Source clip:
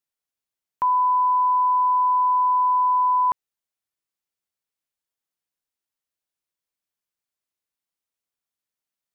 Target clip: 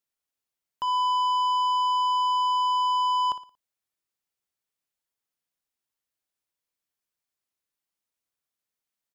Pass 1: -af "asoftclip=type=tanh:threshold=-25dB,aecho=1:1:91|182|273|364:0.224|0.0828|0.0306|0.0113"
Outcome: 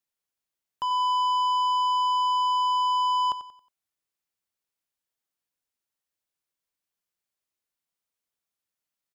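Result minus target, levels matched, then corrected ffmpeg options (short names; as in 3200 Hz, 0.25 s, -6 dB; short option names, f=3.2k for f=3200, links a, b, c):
echo 33 ms late
-af "asoftclip=type=tanh:threshold=-25dB,aecho=1:1:58|116|174|232:0.224|0.0828|0.0306|0.0113"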